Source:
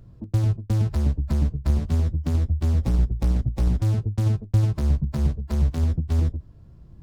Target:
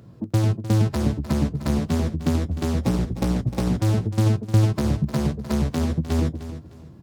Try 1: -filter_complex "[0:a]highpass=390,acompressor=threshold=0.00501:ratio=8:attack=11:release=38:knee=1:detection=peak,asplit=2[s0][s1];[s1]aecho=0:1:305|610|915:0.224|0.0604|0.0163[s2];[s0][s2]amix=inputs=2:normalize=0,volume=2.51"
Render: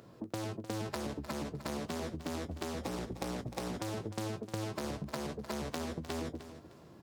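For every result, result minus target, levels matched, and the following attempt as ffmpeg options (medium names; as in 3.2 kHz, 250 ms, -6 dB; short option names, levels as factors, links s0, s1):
compression: peak gain reduction +12.5 dB; 125 Hz band -5.5 dB
-filter_complex "[0:a]highpass=390,asplit=2[s0][s1];[s1]aecho=0:1:305|610|915:0.224|0.0604|0.0163[s2];[s0][s2]amix=inputs=2:normalize=0,volume=2.51"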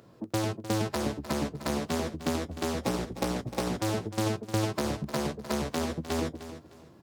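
125 Hz band -6.0 dB
-filter_complex "[0:a]highpass=160,asplit=2[s0][s1];[s1]aecho=0:1:305|610|915:0.224|0.0604|0.0163[s2];[s0][s2]amix=inputs=2:normalize=0,volume=2.51"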